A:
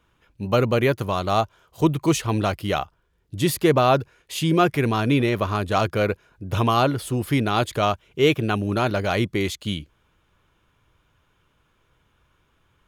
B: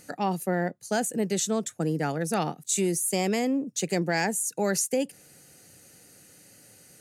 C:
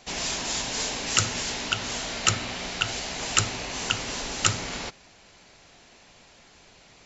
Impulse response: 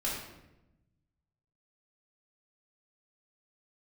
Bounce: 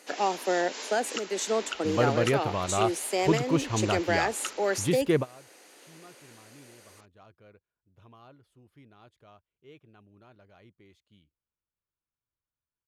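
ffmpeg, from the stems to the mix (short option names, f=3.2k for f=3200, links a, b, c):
-filter_complex "[0:a]adelay=1450,volume=-6dB[a];[1:a]volume=3dB,asplit=2[b][c];[2:a]equalizer=f=710:t=o:w=0.21:g=-5.5,dynaudnorm=f=220:g=9:m=6dB,volume=-6.5dB[d];[c]apad=whole_len=631613[e];[a][e]sidechaingate=range=-28dB:threshold=-44dB:ratio=16:detection=peak[f];[b][d]amix=inputs=2:normalize=0,highpass=f=310:w=0.5412,highpass=f=310:w=1.3066,alimiter=limit=-15dB:level=0:latency=1:release=338,volume=0dB[g];[f][g]amix=inputs=2:normalize=0,lowpass=f=3.7k:p=1"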